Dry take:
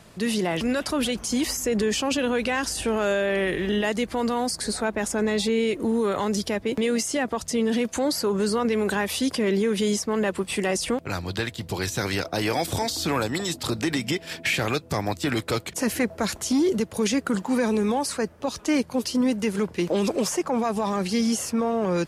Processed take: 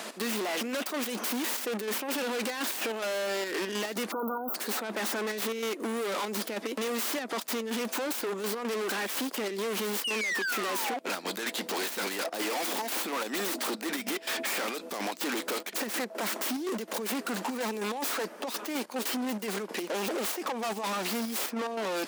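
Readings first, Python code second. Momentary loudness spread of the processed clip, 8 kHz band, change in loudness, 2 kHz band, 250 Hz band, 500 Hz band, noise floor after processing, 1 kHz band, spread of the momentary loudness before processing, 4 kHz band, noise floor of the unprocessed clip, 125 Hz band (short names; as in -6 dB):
3 LU, -5.0 dB, -6.5 dB, -3.5 dB, -11.0 dB, -8.0 dB, -45 dBFS, -4.5 dB, 4 LU, -4.0 dB, -46 dBFS, under -15 dB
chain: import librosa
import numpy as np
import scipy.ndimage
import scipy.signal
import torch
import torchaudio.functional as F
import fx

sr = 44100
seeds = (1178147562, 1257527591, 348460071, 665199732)

p1 = fx.tracing_dist(x, sr, depth_ms=0.35)
p2 = fx.low_shelf(p1, sr, hz=270.0, db=-11.0)
p3 = fx.over_compress(p2, sr, threshold_db=-30.0, ratio=-0.5)
p4 = p2 + F.gain(torch.from_numpy(p3), 3.0).numpy()
p5 = 10.0 ** (-14.0 / 20.0) * np.tanh(p4 / 10.0 ** (-14.0 / 20.0))
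p6 = fx.step_gate(p5, sr, bpm=144, pattern='x.xxxx.x.', floor_db=-12.0, edge_ms=4.5)
p7 = fx.spec_paint(p6, sr, seeds[0], shape='fall', start_s=10.04, length_s=0.93, low_hz=710.0, high_hz=3000.0, level_db=-27.0)
p8 = np.clip(10.0 ** (30.0 / 20.0) * p7, -1.0, 1.0) / 10.0 ** (30.0 / 20.0)
p9 = fx.spec_erase(p8, sr, start_s=4.12, length_s=0.43, low_hz=1500.0, high_hz=12000.0)
p10 = fx.brickwall_highpass(p9, sr, low_hz=190.0)
y = fx.band_squash(p10, sr, depth_pct=40)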